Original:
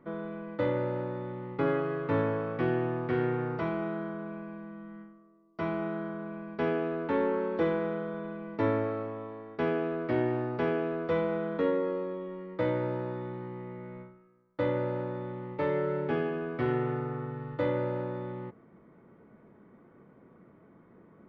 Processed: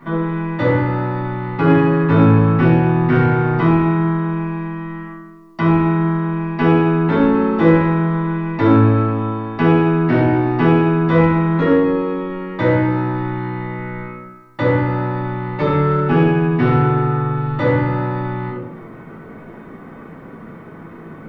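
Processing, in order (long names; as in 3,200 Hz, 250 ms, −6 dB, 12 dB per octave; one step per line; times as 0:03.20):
rectangular room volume 970 cubic metres, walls furnished, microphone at 9.6 metres
in parallel at −6 dB: soft clipping −19.5 dBFS, distortion −9 dB
on the sum: one half of a high-frequency compander encoder only
level +2.5 dB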